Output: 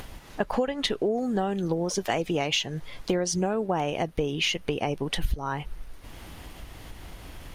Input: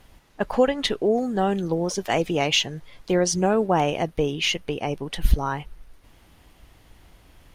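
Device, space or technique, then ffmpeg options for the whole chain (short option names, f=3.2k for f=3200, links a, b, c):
upward and downward compression: -af "acompressor=mode=upward:threshold=-41dB:ratio=2.5,acompressor=threshold=-30dB:ratio=5,volume=6dB"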